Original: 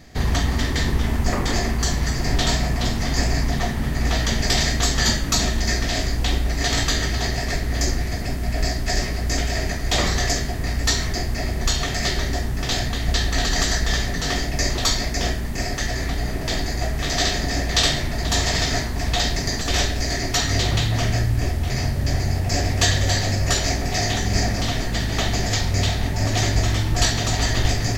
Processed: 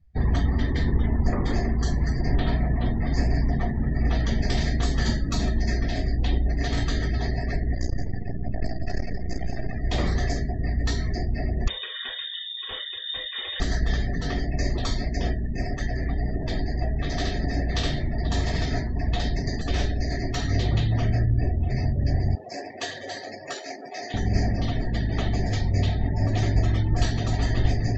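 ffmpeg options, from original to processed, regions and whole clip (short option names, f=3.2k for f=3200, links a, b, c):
-filter_complex "[0:a]asettb=1/sr,asplit=3[a][b][c];[a]atrim=end=2.344[d];[b]atrim=start=2.34:end=3.07,asetpts=PTS-STARTPTS,afade=t=in:d=0.004:c=qsin,afade=t=out:st=0.726:d=0.004:c=qsin,lowpass=2.6k,aemphasis=mode=production:type=50kf[e];[c]atrim=start=3.066[f];[d][e]acrossfade=d=0.004:c1=hsin:c2=qsin[g];[g][f]acrossfade=d=0.004:c1=qsin:c2=hsin,asettb=1/sr,asplit=3[h][i][j];[h]atrim=end=7.754[k];[i]atrim=start=7.75:end=9.76,asetpts=PTS-STARTPTS,afade=t=in:d=0.004:c=qsin,afade=t=out:st=2.006:d=0.004:c=qsin,aeval=exprs='max(val(0),0)':c=same,aecho=1:1:174:0.501,atrim=end_sample=88641[l];[j]atrim=start=9.756[m];[k][l]acrossfade=d=0.004:c1=hsin:c2=qsin[n];[n][m]acrossfade=d=0.004:c1=qsin:c2=hsin,asettb=1/sr,asplit=3[o][p][q];[o]atrim=end=11.684[r];[p]atrim=start=11.68:end=13.6,asetpts=PTS-STARTPTS,afade=t=in:d=0.004:c=qsin,afade=t=out:st=1.916:d=0.004:c=qsin,asplit=2[s][t];[t]adelay=43,volume=-8dB[u];[s][u]amix=inputs=2:normalize=0,atrim=end_sample=84672,lowpass=f=3.1k:t=q:w=0.5098,lowpass=f=3.1k:t=q:w=0.6013,lowpass=f=3.1k:t=q:w=0.9,lowpass=f=3.1k:t=q:w=2.563,afreqshift=-3700[v];[q]atrim=start=13.596[w];[r][v]acrossfade=d=0.004:c1=hsin:c2=qsin[x];[x][w]acrossfade=d=0.004:c1=qsin:c2=hsin,asettb=1/sr,asplit=3[y][z][aa];[y]atrim=end=22.354[ab];[z]atrim=start=22.35:end=24.14,asetpts=PTS-STARTPTS,afade=t=in:d=0.004:c=qsin,afade=t=out:st=1.786:d=0.004:c=qsin,aeval=exprs='sgn(val(0))*max(abs(val(0))-0.0282,0)':c=same,highpass=380[ac];[aa]atrim=start=24.136[ad];[ab][ac]acrossfade=d=0.004:c1=hsin:c2=qsin[ae];[ae][ad]acrossfade=d=0.004:c1=qsin:c2=hsin,afftdn=nr=33:nf=-30,equalizer=f=9.8k:t=o:w=1.6:g=-12,acrossover=split=440[af][ag];[ag]acompressor=threshold=-41dB:ratio=1.5[ah];[af][ah]amix=inputs=2:normalize=0,volume=-1dB"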